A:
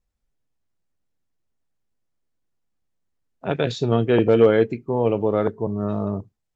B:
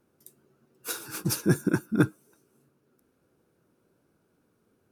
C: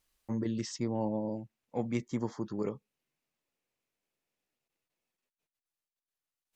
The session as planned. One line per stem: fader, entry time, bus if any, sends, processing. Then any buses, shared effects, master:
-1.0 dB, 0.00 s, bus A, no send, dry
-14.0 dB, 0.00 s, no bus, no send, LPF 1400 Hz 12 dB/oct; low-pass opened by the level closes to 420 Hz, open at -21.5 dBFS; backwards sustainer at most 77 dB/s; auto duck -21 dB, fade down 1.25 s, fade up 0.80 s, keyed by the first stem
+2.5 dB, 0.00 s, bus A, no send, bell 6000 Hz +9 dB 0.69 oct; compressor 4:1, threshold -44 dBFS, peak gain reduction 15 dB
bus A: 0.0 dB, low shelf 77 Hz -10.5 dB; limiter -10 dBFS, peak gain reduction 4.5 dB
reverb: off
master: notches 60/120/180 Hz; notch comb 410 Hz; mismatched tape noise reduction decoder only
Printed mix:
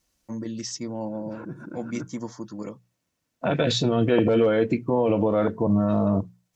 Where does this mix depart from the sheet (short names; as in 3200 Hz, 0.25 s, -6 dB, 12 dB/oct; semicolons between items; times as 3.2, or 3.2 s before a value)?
stem A -1.0 dB -> +9.5 dB; stem C: missing compressor 4:1, threshold -44 dBFS, peak gain reduction 15 dB; master: missing mismatched tape noise reduction decoder only